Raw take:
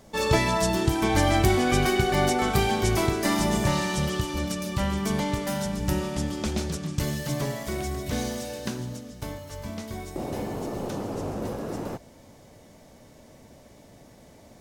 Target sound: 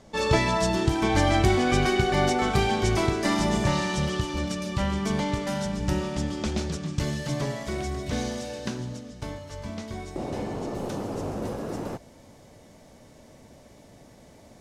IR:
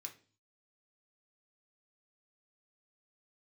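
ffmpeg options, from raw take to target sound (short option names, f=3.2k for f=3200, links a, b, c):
-af "asetnsamples=n=441:p=0,asendcmd='10.75 lowpass f 12000',lowpass=7.2k"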